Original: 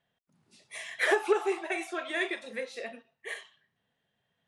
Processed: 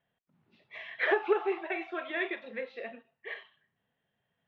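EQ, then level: low-pass 3.4 kHz 24 dB/octave; distance through air 89 m; -1.0 dB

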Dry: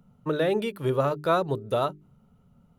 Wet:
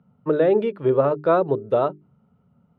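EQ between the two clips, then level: high-pass 92 Hz; low-pass 2.3 kHz 12 dB/octave; dynamic bell 430 Hz, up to +8 dB, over -38 dBFS, Q 0.75; 0.0 dB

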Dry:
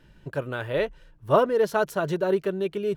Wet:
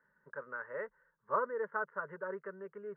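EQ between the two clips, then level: steep low-pass 2.2 kHz 72 dB/octave; differentiator; static phaser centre 480 Hz, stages 8; +9.0 dB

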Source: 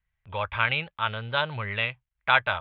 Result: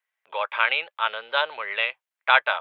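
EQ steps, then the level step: high-pass 450 Hz 24 dB/octave; +3.0 dB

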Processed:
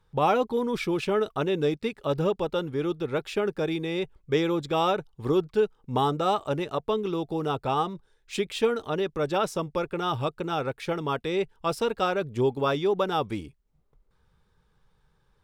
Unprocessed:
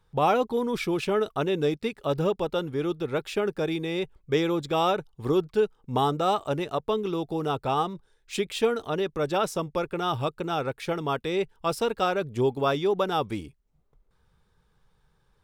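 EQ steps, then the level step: treble shelf 8.1 kHz -5 dB; band-stop 700 Hz, Q 18; 0.0 dB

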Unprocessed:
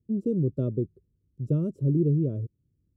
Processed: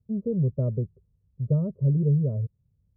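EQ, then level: low-pass 1.2 kHz 24 dB/octave; static phaser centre 770 Hz, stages 4; +5.5 dB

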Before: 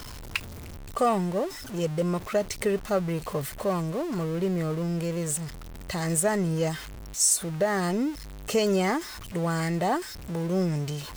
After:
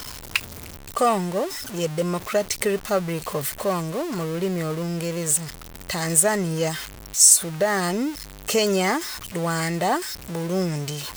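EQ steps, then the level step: tilt EQ +1.5 dB/octave; +4.5 dB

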